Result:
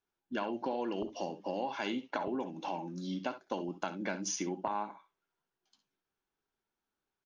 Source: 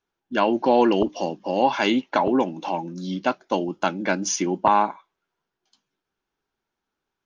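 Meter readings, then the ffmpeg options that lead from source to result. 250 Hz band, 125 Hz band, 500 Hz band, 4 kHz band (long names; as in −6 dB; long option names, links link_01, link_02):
−14.0 dB, −11.5 dB, −15.0 dB, −13.5 dB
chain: -af "acompressor=threshold=-25dB:ratio=6,aecho=1:1:58|68:0.178|0.2,volume=-7.5dB"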